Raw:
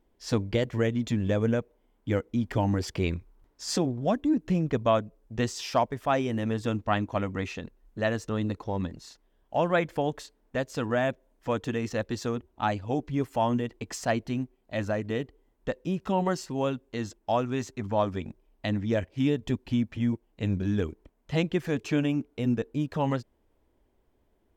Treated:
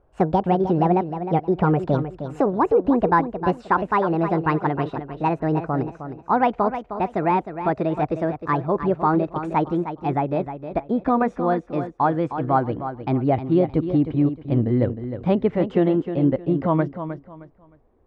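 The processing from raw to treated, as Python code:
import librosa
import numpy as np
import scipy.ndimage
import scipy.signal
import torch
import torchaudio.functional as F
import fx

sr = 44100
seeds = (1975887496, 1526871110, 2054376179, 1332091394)

y = fx.speed_glide(x, sr, from_pct=160, to_pct=112)
y = scipy.signal.sosfilt(scipy.signal.butter(2, 1300.0, 'lowpass', fs=sr, output='sos'), y)
y = fx.echo_feedback(y, sr, ms=310, feedback_pct=26, wet_db=-10)
y = y * librosa.db_to_amplitude(7.5)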